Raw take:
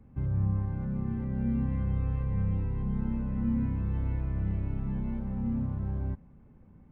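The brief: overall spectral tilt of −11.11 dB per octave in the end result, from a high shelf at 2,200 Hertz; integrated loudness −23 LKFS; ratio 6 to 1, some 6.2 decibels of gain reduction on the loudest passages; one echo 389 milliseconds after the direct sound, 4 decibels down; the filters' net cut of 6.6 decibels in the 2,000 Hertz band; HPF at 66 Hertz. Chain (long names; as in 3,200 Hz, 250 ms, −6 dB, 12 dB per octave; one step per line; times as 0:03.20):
high-pass filter 66 Hz
parametric band 2,000 Hz −7 dB
high-shelf EQ 2,200 Hz −3.5 dB
downward compressor 6 to 1, threshold −32 dBFS
single-tap delay 389 ms −4 dB
level +13.5 dB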